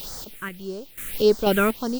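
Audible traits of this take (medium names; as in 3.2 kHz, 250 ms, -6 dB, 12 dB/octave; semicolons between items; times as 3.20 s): a quantiser's noise floor 6-bit, dither triangular; phasing stages 4, 1.7 Hz, lowest notch 800–2600 Hz; random-step tremolo 4.1 Hz, depth 85%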